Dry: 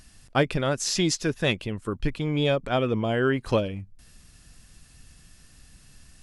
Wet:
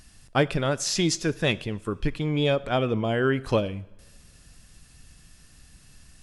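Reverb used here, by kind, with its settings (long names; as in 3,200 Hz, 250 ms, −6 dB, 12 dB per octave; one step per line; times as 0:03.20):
coupled-rooms reverb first 0.73 s, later 2.6 s, from −20 dB, DRR 17 dB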